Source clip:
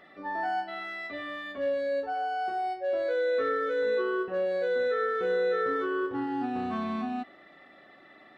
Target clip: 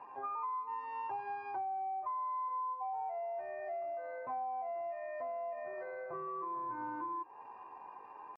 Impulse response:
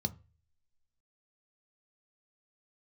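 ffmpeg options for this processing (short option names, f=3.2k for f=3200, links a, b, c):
-filter_complex "[0:a]highpass=76,alimiter=level_in=4.5dB:limit=-24dB:level=0:latency=1:release=108,volume=-4.5dB,lowpass=f=750:t=q:w=4,asetrate=60591,aresample=44100,atempo=0.727827,acompressor=threshold=-36dB:ratio=10,asplit=2[a][b];[1:a]atrim=start_sample=2205,asetrate=31311,aresample=44100[c];[b][c]afir=irnorm=-1:irlink=0,volume=-15dB[d];[a][d]amix=inputs=2:normalize=0,volume=-1dB"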